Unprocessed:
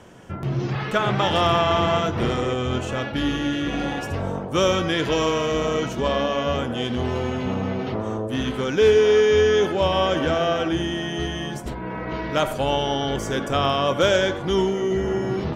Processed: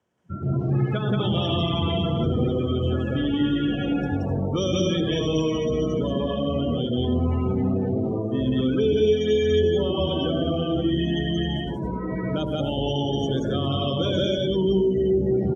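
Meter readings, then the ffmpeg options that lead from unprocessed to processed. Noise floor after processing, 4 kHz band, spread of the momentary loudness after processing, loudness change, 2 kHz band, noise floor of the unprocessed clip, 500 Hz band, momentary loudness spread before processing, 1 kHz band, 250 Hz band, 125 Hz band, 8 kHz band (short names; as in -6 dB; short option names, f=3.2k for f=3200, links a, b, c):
-29 dBFS, -2.5 dB, 5 LU, -1.5 dB, -10.5 dB, -31 dBFS, -3.0 dB, 9 LU, -10.0 dB, +2.5 dB, +3.0 dB, -8.0 dB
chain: -filter_complex "[0:a]highpass=64,aecho=1:1:107.9|177.8|259.5:0.447|1|0.562,acrossover=split=390|3000[a][b][c];[b]acompressor=threshold=-31dB:ratio=8[d];[a][d][c]amix=inputs=3:normalize=0,afftdn=nr=29:nf=-27,asplit=2[e][f];[f]alimiter=limit=-17dB:level=0:latency=1,volume=-2dB[g];[e][g]amix=inputs=2:normalize=0,volume=-4.5dB"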